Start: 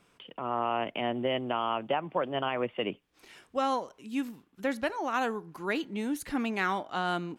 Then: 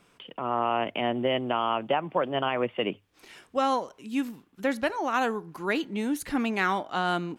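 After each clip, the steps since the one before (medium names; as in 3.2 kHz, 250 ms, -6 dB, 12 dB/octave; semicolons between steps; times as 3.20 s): hum notches 50/100 Hz; trim +3.5 dB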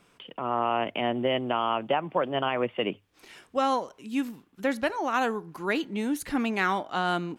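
no audible change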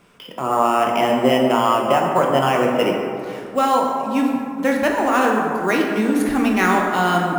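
in parallel at -6 dB: sample-rate reducer 8.1 kHz, jitter 0%; on the sum: plate-style reverb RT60 2.6 s, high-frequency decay 0.4×, DRR -0.5 dB; trim +3.5 dB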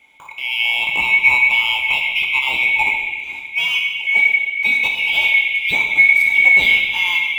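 split-band scrambler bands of 2 kHz; small resonant body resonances 880/2200 Hz, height 15 dB, ringing for 40 ms; trim -5 dB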